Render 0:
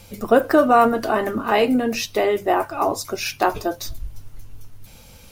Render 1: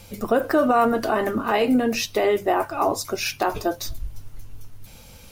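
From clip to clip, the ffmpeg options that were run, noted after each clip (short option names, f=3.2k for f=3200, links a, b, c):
-af "alimiter=limit=-10.5dB:level=0:latency=1:release=53"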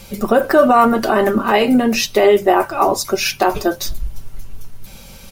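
-af "aecho=1:1:5.2:0.45,volume=6.5dB"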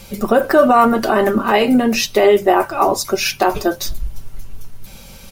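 -af anull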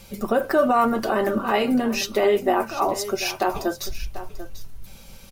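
-af "aecho=1:1:741:0.2,volume=-7.5dB"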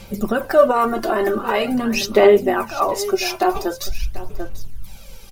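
-af "aphaser=in_gain=1:out_gain=1:delay=2.9:decay=0.54:speed=0.45:type=sinusoidal,volume=1.5dB"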